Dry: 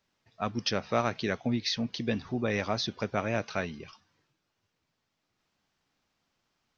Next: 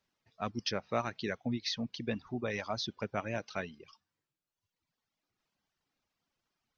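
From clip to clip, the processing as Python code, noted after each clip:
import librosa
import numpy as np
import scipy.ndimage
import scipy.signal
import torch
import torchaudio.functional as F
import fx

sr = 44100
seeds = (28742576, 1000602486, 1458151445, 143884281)

y = fx.dereverb_blind(x, sr, rt60_s=1.3)
y = F.gain(torch.from_numpy(y), -4.5).numpy()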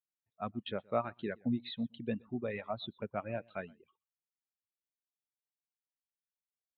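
y = scipy.signal.sosfilt(scipy.signal.cheby1(6, 1.0, 3900.0, 'lowpass', fs=sr, output='sos'), x)
y = y + 10.0 ** (-19.0 / 20.0) * np.pad(y, (int(122 * sr / 1000.0), 0))[:len(y)]
y = fx.spectral_expand(y, sr, expansion=1.5)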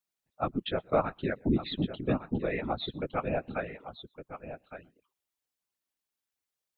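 y = fx.whisperise(x, sr, seeds[0])
y = y + 10.0 ** (-11.0 / 20.0) * np.pad(y, (int(1161 * sr / 1000.0), 0))[:len(y)]
y = F.gain(torch.from_numpy(y), 6.5).numpy()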